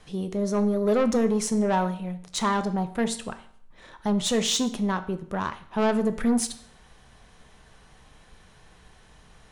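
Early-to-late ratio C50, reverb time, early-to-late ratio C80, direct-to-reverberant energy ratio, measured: 14.0 dB, 0.60 s, 16.5 dB, 9.0 dB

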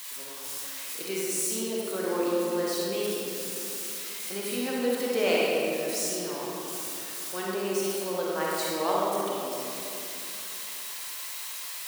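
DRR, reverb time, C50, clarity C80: −5.5 dB, 2.8 s, −4.0 dB, −1.5 dB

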